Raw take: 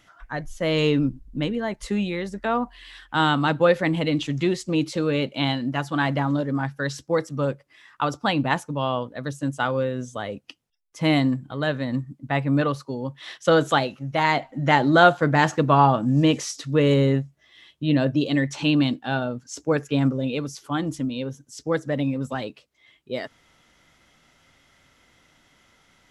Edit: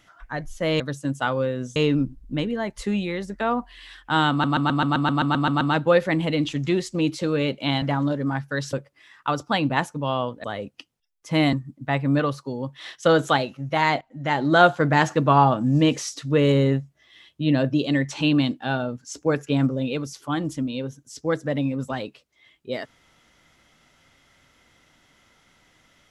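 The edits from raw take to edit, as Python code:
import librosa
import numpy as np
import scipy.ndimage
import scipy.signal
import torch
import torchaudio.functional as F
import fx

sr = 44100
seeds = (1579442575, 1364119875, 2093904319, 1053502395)

y = fx.edit(x, sr, fx.stutter(start_s=3.35, slice_s=0.13, count=11),
    fx.cut(start_s=5.56, length_s=0.54),
    fx.cut(start_s=7.01, length_s=0.46),
    fx.move(start_s=9.18, length_s=0.96, to_s=0.8),
    fx.cut(start_s=11.23, length_s=0.72),
    fx.fade_in_from(start_s=14.43, length_s=0.66, floor_db=-16.5), tone=tone)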